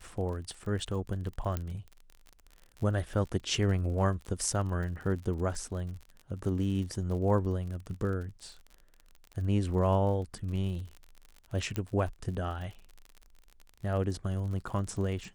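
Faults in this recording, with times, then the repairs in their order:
crackle 50/s -39 dBFS
1.57 pop -19 dBFS
11.76 pop -19 dBFS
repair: de-click

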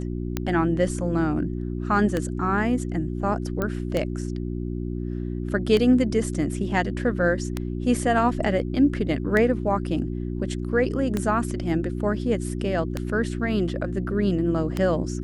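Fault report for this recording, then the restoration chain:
hum 60 Hz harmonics 6 -29 dBFS
tick 33 1/3 rpm -11 dBFS
3.62 pop -13 dBFS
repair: de-click; de-hum 60 Hz, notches 6

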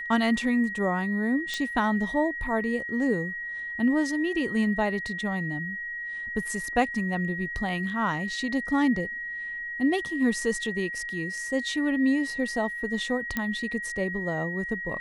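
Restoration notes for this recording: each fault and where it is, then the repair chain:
tone 1900 Hz -32 dBFS
1.54 pop -16 dBFS
13.37 pop -13 dBFS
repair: de-click; notch 1900 Hz, Q 30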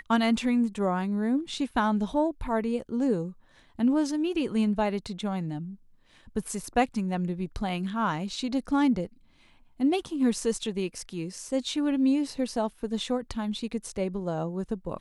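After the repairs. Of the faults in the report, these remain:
none

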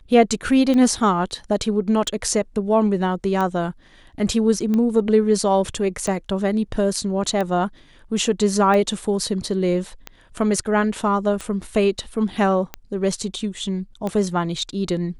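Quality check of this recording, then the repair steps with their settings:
tick 45 rpm -13 dBFS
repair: de-click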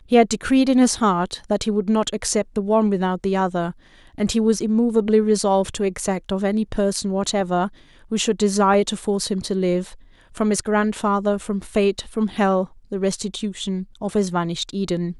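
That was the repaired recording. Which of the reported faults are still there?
none

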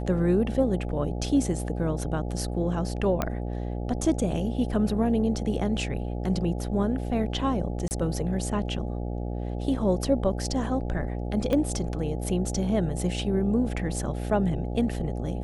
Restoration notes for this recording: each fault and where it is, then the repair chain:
buzz 60 Hz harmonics 14 -31 dBFS
3.22 pop -12 dBFS
7.88–7.91 gap 29 ms
11.53 pop -15 dBFS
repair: de-click; de-hum 60 Hz, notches 14; interpolate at 7.88, 29 ms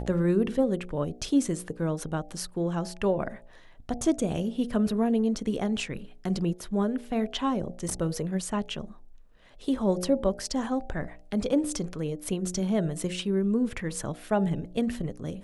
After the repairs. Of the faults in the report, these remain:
11.53 pop

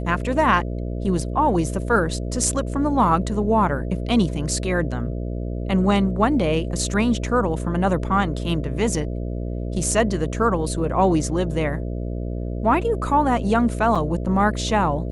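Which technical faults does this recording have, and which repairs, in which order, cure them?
buzz 60 Hz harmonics 11 -27 dBFS
13.95–13.96 gap 5.4 ms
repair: de-hum 60 Hz, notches 11; interpolate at 13.95, 5.4 ms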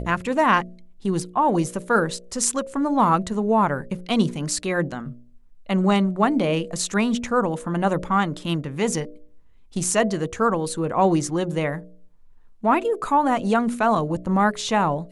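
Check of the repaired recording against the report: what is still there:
none

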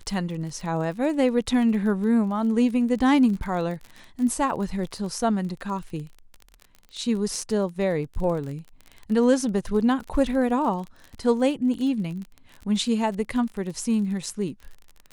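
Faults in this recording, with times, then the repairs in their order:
crackle 35/s -32 dBFS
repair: de-click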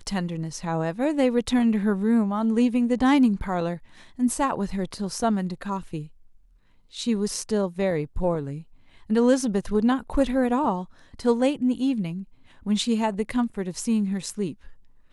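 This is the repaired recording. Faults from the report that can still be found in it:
none

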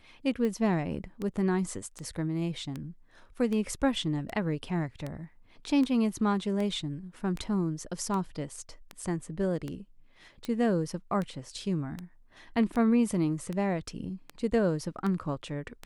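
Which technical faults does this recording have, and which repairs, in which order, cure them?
tick 78 rpm -22 dBFS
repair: de-click

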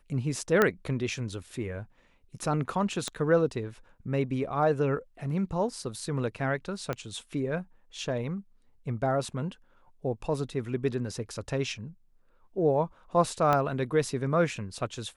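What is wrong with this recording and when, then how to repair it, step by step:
0.62 pop -9 dBFS
3.08 pop -18 dBFS
6.93 pop -18 dBFS
13.53 pop -13 dBFS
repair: de-click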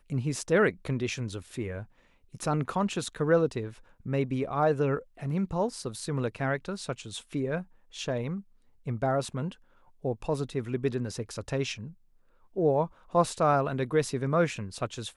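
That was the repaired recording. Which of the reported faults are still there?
3.08 pop
6.93 pop
13.53 pop

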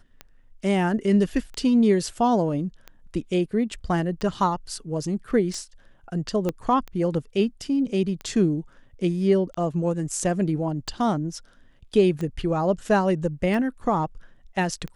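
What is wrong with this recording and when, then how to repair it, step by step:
tick 45 rpm -21 dBFS
6.49 pop -13 dBFS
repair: de-click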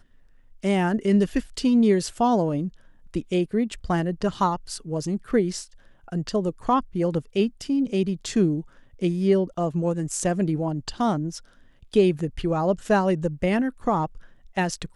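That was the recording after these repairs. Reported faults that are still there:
6.49 pop

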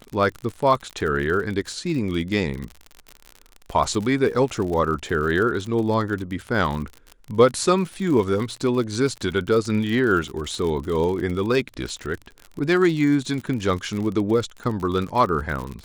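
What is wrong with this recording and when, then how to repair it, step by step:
crackle 58/s -28 dBFS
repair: de-click

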